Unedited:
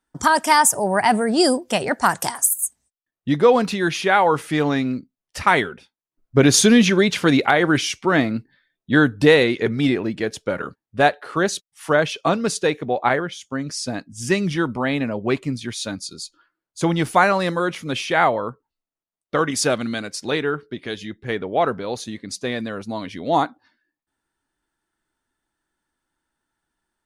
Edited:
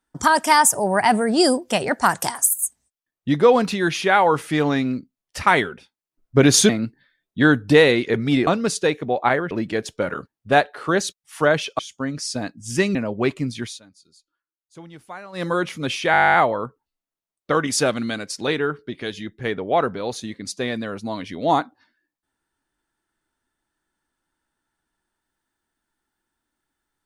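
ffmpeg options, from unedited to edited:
ffmpeg -i in.wav -filter_complex "[0:a]asplit=19[link_01][link_02][link_03][link_04][link_05][link_06][link_07][link_08][link_09][link_10][link_11][link_12][link_13][link_14][link_15][link_16][link_17][link_18][link_19];[link_01]atrim=end=6.692[link_20];[link_02]atrim=start=8.208:end=9.992[link_21];[link_03]atrim=start=12.268:end=13.312[link_22];[link_04]atrim=start=9.988:end=12.272[link_23];[link_05]atrim=start=13.308:end=14.472[link_24];[link_06]atrim=start=15.008:end=15.86,asetpts=PTS-STARTPTS,afade=type=out:start_time=0.692:duration=0.16:silence=0.0841395[link_25];[link_07]atrim=start=15.86:end=17.38,asetpts=PTS-STARTPTS,volume=-21.5dB[link_26];[link_08]atrim=start=17.38:end=18.202,asetpts=PTS-STARTPTS,afade=type=in:duration=0.16:silence=0.0841395[link_27];[link_09]atrim=start=18.178:end=18.202[link_28];[link_10]atrim=start=18.178:end=18.202[link_29];[link_11]atrim=start=18.178:end=18.202[link_30];[link_12]atrim=start=18.178:end=18.202[link_31];[link_13]atrim=start=18.178:end=18.202[link_32];[link_14]atrim=start=18.178:end=18.202[link_33];[link_15]atrim=start=18.178:end=18.202[link_34];[link_16]atrim=start=18.178:end=18.202[link_35];[link_17]atrim=start=18.178:end=18.202[link_36];[link_18]atrim=start=18.178:end=18.202[link_37];[link_19]atrim=start=18.178[link_38];[link_20][link_21]acrossfade=duration=0.004:curve1=hsin:curve2=hsin[link_39];[link_39][link_22]acrossfade=duration=0.004:curve1=hsin:curve2=hsin[link_40];[link_40][link_23]acrossfade=duration=0.004:curve1=hsin:curve2=hsin[link_41];[link_41][link_24]acrossfade=duration=0.004:curve1=hsin:curve2=hsin[link_42];[link_25][link_26][link_27]concat=n=3:v=0:a=1[link_43];[link_42][link_43]acrossfade=duration=0.004:curve1=hsin:curve2=hsin[link_44];[link_44][link_28]acrossfade=duration=0.004:curve1=hsin:curve2=hsin[link_45];[link_45][link_29]acrossfade=duration=0.004:curve1=hsin:curve2=hsin[link_46];[link_46][link_30]acrossfade=duration=0.004:curve1=hsin:curve2=hsin[link_47];[link_47][link_31]acrossfade=duration=0.004:curve1=hsin:curve2=hsin[link_48];[link_48][link_32]acrossfade=duration=0.004:curve1=hsin:curve2=hsin[link_49];[link_49][link_33]acrossfade=duration=0.004:curve1=hsin:curve2=hsin[link_50];[link_50][link_34]acrossfade=duration=0.004:curve1=hsin:curve2=hsin[link_51];[link_51][link_35]acrossfade=duration=0.004:curve1=hsin:curve2=hsin[link_52];[link_52][link_36]acrossfade=duration=0.004:curve1=hsin:curve2=hsin[link_53];[link_53][link_37]acrossfade=duration=0.004:curve1=hsin:curve2=hsin[link_54];[link_54][link_38]acrossfade=duration=0.004:curve1=hsin:curve2=hsin" out.wav

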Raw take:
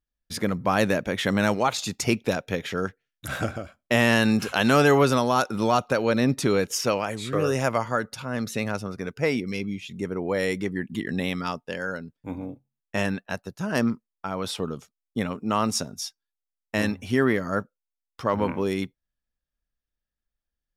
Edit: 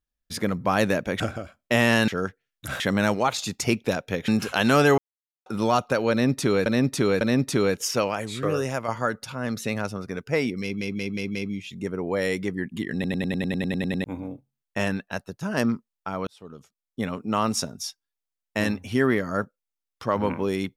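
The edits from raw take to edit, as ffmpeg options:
ffmpeg -i in.wav -filter_complex "[0:a]asplit=26[link_01][link_02][link_03][link_04][link_05][link_06][link_07][link_08][link_09][link_10][link_11][link_12][link_13][link_14][link_15][link_16][link_17][link_18][link_19][link_20][link_21][link_22][link_23][link_24][link_25][link_26];[link_01]atrim=end=1.202[link_27];[link_02]atrim=start=3.398:end=4.282[link_28];[link_03]atrim=start=2.678:end=3.402[link_29];[link_04]atrim=start=1.198:end=2.682[link_30];[link_05]atrim=start=4.278:end=4.98,asetpts=PTS-STARTPTS,afade=type=out:start_time=0.698:duration=0.004:curve=hsin[link_31];[link_06]atrim=start=4.98:end=5.46,asetpts=PTS-STARTPTS,volume=0[link_32];[link_07]atrim=start=5.46:end=6.662,asetpts=PTS-STARTPTS,afade=type=in:duration=0.004:curve=hsin[link_33];[link_08]atrim=start=6.108:end=6.662[link_34];[link_09]atrim=start=6.108:end=7.78,asetpts=PTS-STARTPTS,afade=type=out:start_time=1.212:duration=0.46:silence=0.446684[link_35];[link_10]atrim=start=7.78:end=9.712,asetpts=PTS-STARTPTS,afade=type=in:duration=0.004:curve=hsin:silence=0.446684[link_36];[link_11]atrim=start=9.528:end=9.712[link_37];[link_12]atrim=start=9.528:end=9.712[link_38];[link_13]atrim=start=9.528:end=9.712[link_39];[link_14]atrim=start=9.528:end=11.222[link_40];[link_15]atrim=start=11.118:end=11.222[link_41];[link_16]atrim=start=11.118:end=11.222[link_42];[link_17]atrim=start=11.118:end=11.222[link_43];[link_18]atrim=start=11.118:end=11.222[link_44];[link_19]atrim=start=11.118:end=11.222[link_45];[link_20]atrim=start=11.118:end=11.222[link_46];[link_21]atrim=start=11.118:end=11.222[link_47];[link_22]atrim=start=11.118:end=11.222[link_48];[link_23]atrim=start=11.118:end=11.222[link_49];[link_24]atrim=start=11.118:end=11.222[link_50];[link_25]atrim=start=12.218:end=14.45,asetpts=PTS-STARTPTS,afade=type=out:start_time=2.228:duration=0.004:curve=hsin[link_51];[link_26]atrim=start=14.45,asetpts=PTS-STARTPTS,afade=type=in:duration=0.9[link_52];[link_27][link_28]acrossfade=duration=0.004:curve1=hsin:curve2=hsin[link_53];[link_53][link_29]acrossfade=duration=0.004:curve1=hsin:curve2=hsin[link_54];[link_54][link_30]acrossfade=duration=0.004:curve1=hsin:curve2=hsin[link_55];[link_31][link_32][link_33]concat=n=3:v=0:a=1[link_56];[link_55][link_56]acrossfade=duration=0.004:curve1=hsin:curve2=hsin[link_57];[link_57][link_34]acrossfade=duration=0.004:curve1=hsin:curve2=hsin[link_58];[link_35][link_36]concat=n=2:v=0:a=1[link_59];[link_58][link_59]acrossfade=duration=0.004:curve1=hsin:curve2=hsin[link_60];[link_60][link_37]acrossfade=duration=0.004:curve1=hsin:curve2=hsin[link_61];[link_61][link_38]acrossfade=duration=0.004:curve1=hsin:curve2=hsin[link_62];[link_62][link_39]acrossfade=duration=0.004:curve1=hsin:curve2=hsin[link_63];[link_63][link_40]acrossfade=duration=0.004:curve1=hsin:curve2=hsin[link_64];[link_64][link_41]acrossfade=duration=0.004:curve1=hsin:curve2=hsin[link_65];[link_65][link_42]acrossfade=duration=0.004:curve1=hsin:curve2=hsin[link_66];[link_66][link_43]acrossfade=duration=0.004:curve1=hsin:curve2=hsin[link_67];[link_67][link_44]acrossfade=duration=0.004:curve1=hsin:curve2=hsin[link_68];[link_68][link_45]acrossfade=duration=0.004:curve1=hsin:curve2=hsin[link_69];[link_69][link_46]acrossfade=duration=0.004:curve1=hsin:curve2=hsin[link_70];[link_70][link_47]acrossfade=duration=0.004:curve1=hsin:curve2=hsin[link_71];[link_71][link_48]acrossfade=duration=0.004:curve1=hsin:curve2=hsin[link_72];[link_72][link_49]acrossfade=duration=0.004:curve1=hsin:curve2=hsin[link_73];[link_73][link_50]acrossfade=duration=0.004:curve1=hsin:curve2=hsin[link_74];[link_51][link_52]concat=n=2:v=0:a=1[link_75];[link_74][link_75]acrossfade=duration=0.004:curve1=hsin:curve2=hsin" out.wav

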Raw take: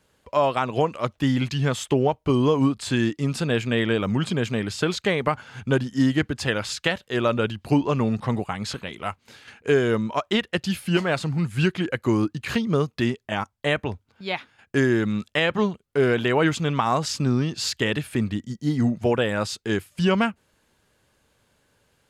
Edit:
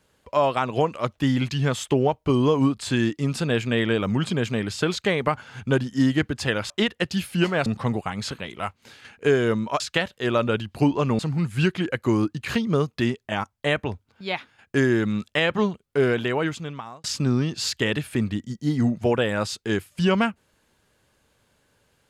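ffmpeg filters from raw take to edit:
ffmpeg -i in.wav -filter_complex "[0:a]asplit=6[link_01][link_02][link_03][link_04][link_05][link_06];[link_01]atrim=end=6.702[link_07];[link_02]atrim=start=10.228:end=11.192[link_08];[link_03]atrim=start=8.088:end=10.232[link_09];[link_04]atrim=start=6.698:end=8.092[link_10];[link_05]atrim=start=11.188:end=17.04,asetpts=PTS-STARTPTS,afade=type=out:start_time=4.792:duration=1.06[link_11];[link_06]atrim=start=17.04,asetpts=PTS-STARTPTS,afade=type=in:duration=0.004:curve=hsin[link_12];[link_07][link_08]acrossfade=duration=0.004:curve1=hsin:curve2=hsin[link_13];[link_13][link_09]acrossfade=duration=0.004:curve1=hsin:curve2=hsin[link_14];[link_14][link_10]acrossfade=duration=0.004:curve1=hsin:curve2=hsin[link_15];[link_11][link_12]concat=n=2:v=0:a=1[link_16];[link_15][link_16]acrossfade=duration=0.004:curve1=hsin:curve2=hsin" out.wav

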